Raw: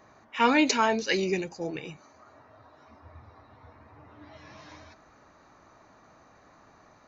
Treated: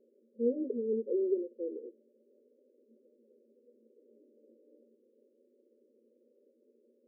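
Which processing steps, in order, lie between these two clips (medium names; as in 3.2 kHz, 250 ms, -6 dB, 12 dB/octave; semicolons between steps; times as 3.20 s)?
static phaser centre 430 Hz, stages 8; FFT band-pass 220–600 Hz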